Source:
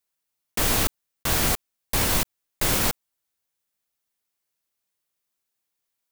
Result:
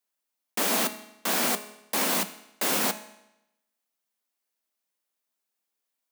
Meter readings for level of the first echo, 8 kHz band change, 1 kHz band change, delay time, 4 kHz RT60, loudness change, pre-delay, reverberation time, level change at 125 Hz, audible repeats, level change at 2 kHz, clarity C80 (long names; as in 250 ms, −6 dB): no echo audible, −2.5 dB, −0.5 dB, no echo audible, 0.85 s, −2.5 dB, 5 ms, 0.90 s, −15.5 dB, no echo audible, −2.0 dB, 15.5 dB